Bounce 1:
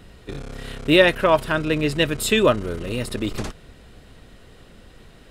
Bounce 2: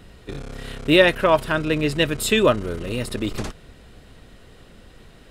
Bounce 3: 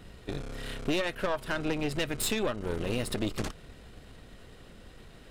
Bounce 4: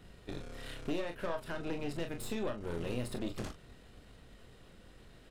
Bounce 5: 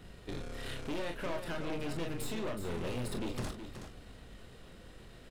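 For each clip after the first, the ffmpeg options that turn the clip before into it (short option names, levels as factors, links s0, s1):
-af anull
-af "acompressor=threshold=0.0708:ratio=12,aeval=exprs='(tanh(17.8*val(0)+0.8)-tanh(0.8))/17.8':c=same,volume=1.19"
-filter_complex "[0:a]aecho=1:1:24|41:0.376|0.335,acrossover=split=1100[s0][s1];[s1]alimiter=level_in=1.88:limit=0.0631:level=0:latency=1:release=206,volume=0.531[s2];[s0][s2]amix=inputs=2:normalize=0,volume=0.447"
-filter_complex "[0:a]asoftclip=type=hard:threshold=0.015,asplit=2[s0][s1];[s1]aecho=0:1:372:0.376[s2];[s0][s2]amix=inputs=2:normalize=0,volume=1.5"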